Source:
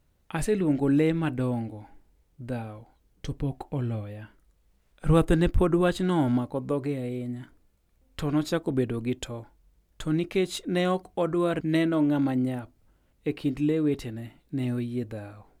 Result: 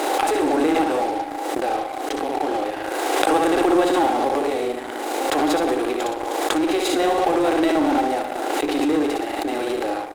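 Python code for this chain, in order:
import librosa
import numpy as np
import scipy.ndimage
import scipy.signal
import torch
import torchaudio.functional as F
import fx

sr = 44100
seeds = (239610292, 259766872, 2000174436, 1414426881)

p1 = fx.bin_compress(x, sr, power=0.6)
p2 = scipy.signal.sosfilt(scipy.signal.ellip(4, 1.0, 40, 300.0, 'highpass', fs=sr, output='sos'), p1)
p3 = fx.peak_eq(p2, sr, hz=790.0, db=13.5, octaves=0.27)
p4 = p3 + fx.echo_feedback(p3, sr, ms=97, feedback_pct=49, wet_db=-5.0, dry=0)
p5 = fx.stretch_grains(p4, sr, factor=0.65, grain_ms=73.0)
p6 = fx.fuzz(p5, sr, gain_db=30.0, gate_db=-37.0)
p7 = p5 + (p6 * 10.0 ** (-11.5 / 20.0))
p8 = fx.pre_swell(p7, sr, db_per_s=23.0)
y = p8 * 10.0 ** (-1.0 / 20.0)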